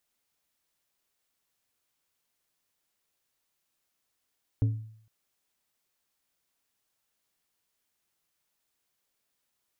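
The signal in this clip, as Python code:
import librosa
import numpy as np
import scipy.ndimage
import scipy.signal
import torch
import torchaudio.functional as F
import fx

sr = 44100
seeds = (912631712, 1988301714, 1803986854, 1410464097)

y = fx.strike_glass(sr, length_s=0.46, level_db=-19, body='plate', hz=110.0, decay_s=0.62, tilt_db=10.5, modes=5)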